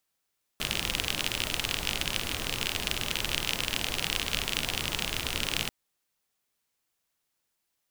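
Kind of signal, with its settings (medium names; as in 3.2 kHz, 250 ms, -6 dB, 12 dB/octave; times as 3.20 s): rain from filtered ticks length 5.09 s, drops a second 43, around 2.9 kHz, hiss -2 dB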